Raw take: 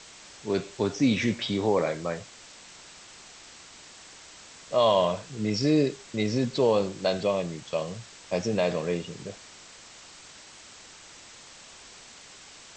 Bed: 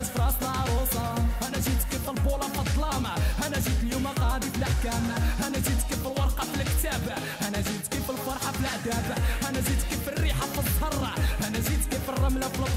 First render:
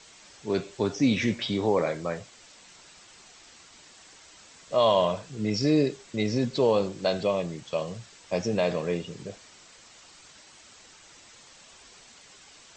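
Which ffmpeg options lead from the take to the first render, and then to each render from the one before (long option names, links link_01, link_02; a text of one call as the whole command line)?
ffmpeg -i in.wav -af "afftdn=noise_reduction=6:noise_floor=-49" out.wav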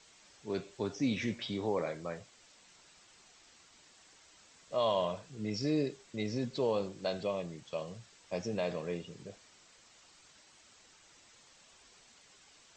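ffmpeg -i in.wav -af "volume=-9dB" out.wav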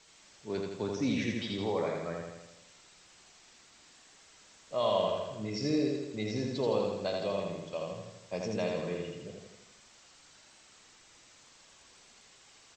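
ffmpeg -i in.wav -af "aecho=1:1:82|164|246|328|410|492|574|656:0.708|0.404|0.23|0.131|0.0747|0.0426|0.0243|0.0138" out.wav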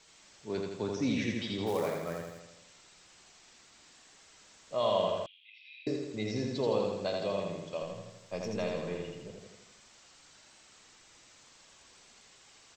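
ffmpeg -i in.wav -filter_complex "[0:a]asplit=3[link_01][link_02][link_03];[link_01]afade=type=out:start_time=1.66:duration=0.02[link_04];[link_02]acrusher=bits=4:mode=log:mix=0:aa=0.000001,afade=type=in:start_time=1.66:duration=0.02,afade=type=out:start_time=2.39:duration=0.02[link_05];[link_03]afade=type=in:start_time=2.39:duration=0.02[link_06];[link_04][link_05][link_06]amix=inputs=3:normalize=0,asettb=1/sr,asplit=3[link_07][link_08][link_09];[link_07]atrim=end=5.264[link_10];[link_08]atrim=start=5.26:end=5.87,asetpts=PTS-STARTPTS,afade=type=in:duration=0.004:curve=qsin,afade=type=out:start_time=0.606:duration=0.004:curve=qsin,asuperpass=centerf=2900:order=8:qfactor=2.1[link_11];[link_09]atrim=start=5.866[link_12];[link_10][link_11]acrossfade=duration=0.004:curve1=hsin:curve2=qsin[link_13];[link_13][link_12]acrossfade=duration=0.004:curve1=qsin:curve2=hsin,asettb=1/sr,asplit=3[link_14][link_15][link_16];[link_14]atrim=end=7.824[link_17];[link_15]atrim=start=7.82:end=9.43,asetpts=PTS-STARTPTS,afade=type=in:duration=0.004:curve=qsin,afade=type=out:start_time=1.606:duration=0.004:curve=qsin,aeval=exprs='if(lt(val(0),0),0.708*val(0),val(0))':channel_layout=same[link_18];[link_16]atrim=start=9.426[link_19];[link_17][link_18]acrossfade=duration=0.004:curve1=hsin:curve2=qsin[link_20];[link_20][link_19]acrossfade=duration=0.004:curve1=qsin:curve2=hsin" out.wav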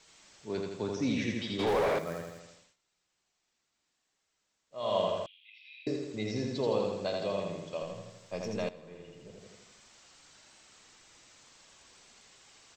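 ffmpeg -i in.wav -filter_complex "[0:a]asettb=1/sr,asplit=3[link_01][link_02][link_03];[link_01]atrim=end=1.594[link_04];[link_02]atrim=start=1.59:end=1.99,asetpts=PTS-STARTPTS,afade=type=in:duration=0.004:curve=qsin,afade=type=out:start_time=0.396:duration=0.004:curve=qsin,asplit=2[link_05][link_06];[link_06]highpass=frequency=720:poles=1,volume=23dB,asoftclip=type=tanh:threshold=-20.5dB[link_07];[link_05][link_07]amix=inputs=2:normalize=0,lowpass=frequency=2000:poles=1,volume=-6dB[link_08];[link_03]atrim=start=1.986[link_09];[link_04][link_08]acrossfade=duration=0.004:curve1=hsin:curve2=qsin[link_10];[link_10][link_09]acrossfade=duration=0.004:curve1=qsin:curve2=hsin,asplit=4[link_11][link_12][link_13][link_14];[link_11]atrim=end=2.76,asetpts=PTS-STARTPTS,afade=type=out:start_time=2.5:duration=0.26:silence=0.0841395[link_15];[link_12]atrim=start=2.76:end=4.71,asetpts=PTS-STARTPTS,volume=-21.5dB[link_16];[link_13]atrim=start=4.71:end=8.69,asetpts=PTS-STARTPTS,afade=type=in:duration=0.26:silence=0.0841395,afade=type=out:start_time=3.976:duration=0.004:curve=hsin:silence=0.177828[link_17];[link_14]atrim=start=8.69,asetpts=PTS-STARTPTS,afade=type=in:duration=0.83:curve=qua:silence=0.177828[link_18];[link_15][link_16][link_17][link_18]concat=n=4:v=0:a=1" out.wav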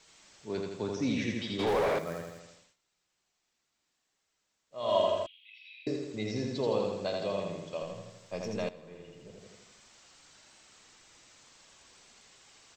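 ffmpeg -i in.wav -filter_complex "[0:a]asettb=1/sr,asplit=3[link_01][link_02][link_03];[link_01]atrim=end=4.884[link_04];[link_02]atrim=start=4.88:end=5.72,asetpts=PTS-STARTPTS,afade=type=in:duration=0.004:curve=qsin,afade=type=out:start_time=0.836:duration=0.004:curve=qsin,aecho=1:1:3.1:0.65,atrim=end_sample=37044[link_05];[link_03]atrim=start=5.716[link_06];[link_04][link_05]acrossfade=duration=0.004:curve1=hsin:curve2=qsin[link_07];[link_07][link_06]acrossfade=duration=0.004:curve1=qsin:curve2=hsin" out.wav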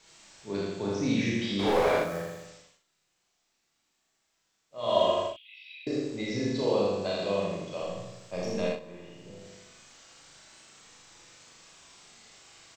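ffmpeg -i in.wav -filter_complex "[0:a]asplit=2[link_01][link_02];[link_02]adelay=40,volume=-5dB[link_03];[link_01][link_03]amix=inputs=2:normalize=0,aecho=1:1:34|60:0.708|0.708" out.wav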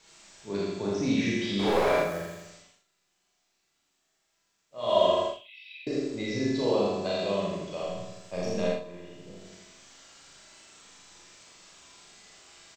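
ffmpeg -i in.wav -filter_complex "[0:a]asplit=2[link_01][link_02];[link_02]adelay=45,volume=-6.5dB[link_03];[link_01][link_03]amix=inputs=2:normalize=0,aecho=1:1:93:0.1" out.wav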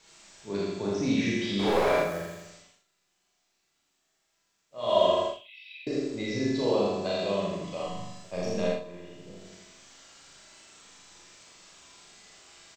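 ffmpeg -i in.wav -filter_complex "[0:a]asettb=1/sr,asplit=3[link_01][link_02][link_03];[link_01]atrim=end=7.604[link_04];[link_02]atrim=start=7.6:end=8.24,asetpts=PTS-STARTPTS,afade=type=in:duration=0.004:curve=qsin,afade=type=out:start_time=0.636:duration=0.004:curve=qsin,asplit=2[link_05][link_06];[link_06]adelay=41,volume=-4.5dB[link_07];[link_05][link_07]amix=inputs=2:normalize=0,atrim=end_sample=28224[link_08];[link_03]atrim=start=8.236[link_09];[link_04][link_08]acrossfade=duration=0.004:curve1=hsin:curve2=qsin[link_10];[link_10][link_09]acrossfade=duration=0.004:curve1=qsin:curve2=hsin" out.wav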